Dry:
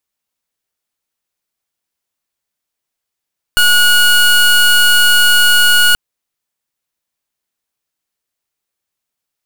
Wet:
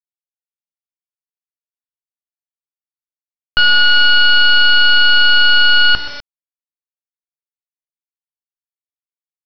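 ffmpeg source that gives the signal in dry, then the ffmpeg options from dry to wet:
-f lavfi -i "aevalsrc='0.376*(2*lt(mod(1450*t,1),0.24)-1)':d=2.38:s=44100"
-af "bandreject=f=60:t=h:w=6,bandreject=f=120:t=h:w=6,bandreject=f=180:t=h:w=6,bandreject=f=240:t=h:w=6,bandreject=f=300:t=h:w=6,bandreject=f=360:t=h:w=6,bandreject=f=420:t=h:w=6,aecho=1:1:126|252|378|504:0.178|0.0765|0.0329|0.0141,aresample=11025,acrusher=bits=4:mix=0:aa=0.000001,aresample=44100"

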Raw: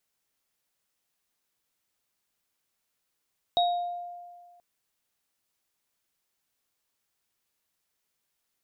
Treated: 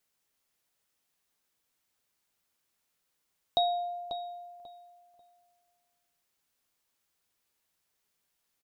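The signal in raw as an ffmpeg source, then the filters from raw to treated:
-f lavfi -i "aevalsrc='0.1*pow(10,-3*t/1.77)*sin(2*PI*703*t)+0.0668*pow(10,-3*t/0.5)*sin(2*PI*3780*t)':d=1.03:s=44100"
-filter_complex "[0:a]asplit=2[a][b];[b]adelay=12,volume=-12.5dB[c];[a][c]amix=inputs=2:normalize=0,asplit=2[d][e];[e]adelay=541,lowpass=f=2.4k:p=1,volume=-8dB,asplit=2[f][g];[g]adelay=541,lowpass=f=2.4k:p=1,volume=0.25,asplit=2[h][i];[i]adelay=541,lowpass=f=2.4k:p=1,volume=0.25[j];[f][h][j]amix=inputs=3:normalize=0[k];[d][k]amix=inputs=2:normalize=0"

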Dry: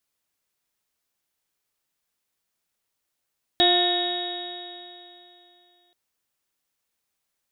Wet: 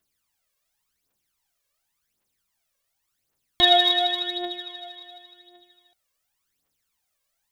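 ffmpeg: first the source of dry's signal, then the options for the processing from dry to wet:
-f lavfi -i "aevalsrc='0.0794*pow(10,-3*t/2.9)*sin(2*PI*352.26*t)+0.0944*pow(10,-3*t/2.9)*sin(2*PI*706.11*t)+0.01*pow(10,-3*t/2.9)*sin(2*PI*1063.1*t)+0.01*pow(10,-3*t/2.9)*sin(2*PI*1424.8*t)+0.0398*pow(10,-3*t/2.9)*sin(2*PI*1792.7*t)+0.0112*pow(10,-3*t/2.9)*sin(2*PI*2168.27*t)+0.00891*pow(10,-3*t/2.9)*sin(2*PI*2552.95*t)+0.0168*pow(10,-3*t/2.9)*sin(2*PI*2948.07*t)+0.0631*pow(10,-3*t/2.9)*sin(2*PI*3354.94*t)+0.141*pow(10,-3*t/2.9)*sin(2*PI*3774.78*t)':d=2.33:s=44100"
-af "aphaser=in_gain=1:out_gain=1:delay=1.9:decay=0.69:speed=0.9:type=triangular"

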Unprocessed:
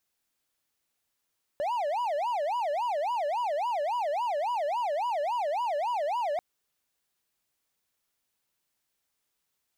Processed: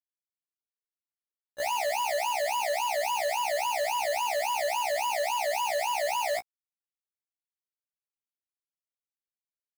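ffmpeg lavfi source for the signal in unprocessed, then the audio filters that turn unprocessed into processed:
-f lavfi -i "aevalsrc='0.0596*(1-4*abs(mod((778*t-207/(2*PI*3.6)*sin(2*PI*3.6*t))+0.25,1)-0.5))':d=4.79:s=44100"
-af "acrusher=bits=4:mix=0:aa=0.000001,afftfilt=real='re*1.73*eq(mod(b,3),0)':imag='im*1.73*eq(mod(b,3),0)':win_size=2048:overlap=0.75"

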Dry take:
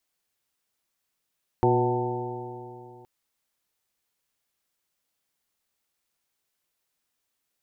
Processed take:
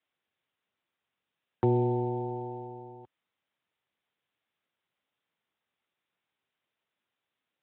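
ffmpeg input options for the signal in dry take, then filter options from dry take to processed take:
-f lavfi -i "aevalsrc='0.0668*pow(10,-3*t/2.82)*sin(2*PI*120.14*t)+0.0335*pow(10,-3*t/2.82)*sin(2*PI*241.15*t)+0.1*pow(10,-3*t/2.82)*sin(2*PI*363.87*t)+0.0447*pow(10,-3*t/2.82)*sin(2*PI*489.13*t)+0.0178*pow(10,-3*t/2.82)*sin(2*PI*617.74*t)+0.0531*pow(10,-3*t/2.82)*sin(2*PI*750.46*t)+0.0631*pow(10,-3*t/2.82)*sin(2*PI*888.02*t)':d=1.42:s=44100"
-filter_complex "[0:a]acrossover=split=450[a][b];[b]acompressor=threshold=-37dB:ratio=4[c];[a][c]amix=inputs=2:normalize=0" -ar 8000 -c:a libspeex -b:a 24k

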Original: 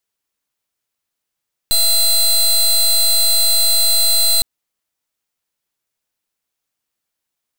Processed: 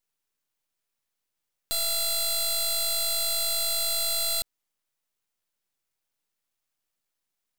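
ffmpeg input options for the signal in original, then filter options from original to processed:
-f lavfi -i "aevalsrc='0.224*(2*lt(mod(4070*t,1),0.22)-1)':d=2.71:s=44100"
-filter_complex "[0:a]acrossover=split=5800[a][b];[b]acompressor=threshold=-25dB:ratio=4:attack=1:release=60[c];[a][c]amix=inputs=2:normalize=0,aeval=exprs='max(val(0),0)':c=same"

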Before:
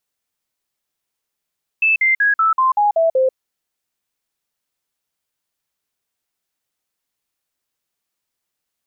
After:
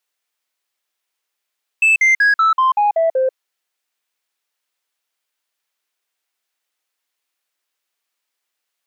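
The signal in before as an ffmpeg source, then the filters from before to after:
-f lavfi -i "aevalsrc='0.266*clip(min(mod(t,0.19),0.14-mod(t,0.19))/0.005,0,1)*sin(2*PI*2630*pow(2,-floor(t/0.19)/3)*mod(t,0.19))':d=1.52:s=44100"
-af "highpass=370,equalizer=f=2.3k:w=0.55:g=5,asoftclip=type=tanh:threshold=-8.5dB"

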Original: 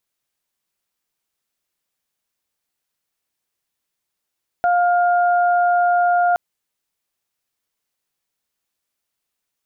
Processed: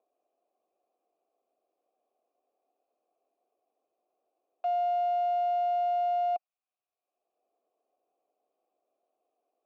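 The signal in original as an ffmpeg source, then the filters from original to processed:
-f lavfi -i "aevalsrc='0.211*sin(2*PI*706*t)+0.075*sin(2*PI*1412*t)':d=1.72:s=44100"
-filter_complex "[0:a]acrossover=split=180|260|480[a][b][c][d];[c]acompressor=mode=upward:threshold=-43dB:ratio=2.5[e];[a][b][e][d]amix=inputs=4:normalize=0,asoftclip=type=tanh:threshold=-25.5dB,asplit=3[f][g][h];[f]bandpass=f=730:t=q:w=8,volume=0dB[i];[g]bandpass=f=1.09k:t=q:w=8,volume=-6dB[j];[h]bandpass=f=2.44k:t=q:w=8,volume=-9dB[k];[i][j][k]amix=inputs=3:normalize=0"

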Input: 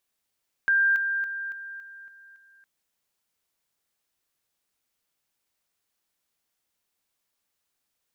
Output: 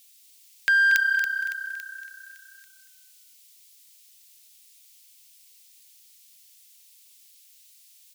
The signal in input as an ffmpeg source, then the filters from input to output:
-f lavfi -i "aevalsrc='pow(10,(-18-6*floor(t/0.28))/20)*sin(2*PI*1590*t)':d=1.96:s=44100"
-filter_complex "[0:a]aexciter=amount=5.4:drive=9.5:freq=2.1k,asplit=2[a][b];[b]asplit=3[c][d][e];[c]adelay=233,afreqshift=-32,volume=-9.5dB[f];[d]adelay=466,afreqshift=-64,volume=-20dB[g];[e]adelay=699,afreqshift=-96,volume=-30.4dB[h];[f][g][h]amix=inputs=3:normalize=0[i];[a][i]amix=inputs=2:normalize=0"

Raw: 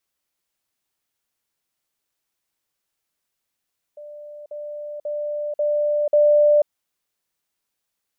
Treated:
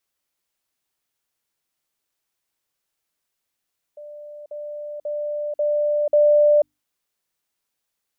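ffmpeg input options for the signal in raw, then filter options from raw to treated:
-f lavfi -i "aevalsrc='pow(10,(-35.5+6*floor(t/0.54))/20)*sin(2*PI*592*t)*clip(min(mod(t,0.54),0.49-mod(t,0.54))/0.005,0,1)':d=2.7:s=44100"
-af "bandreject=f=50:t=h:w=6,bandreject=f=100:t=h:w=6,bandreject=f=150:t=h:w=6,bandreject=f=200:t=h:w=6,bandreject=f=250:t=h:w=6,bandreject=f=300:t=h:w=6"

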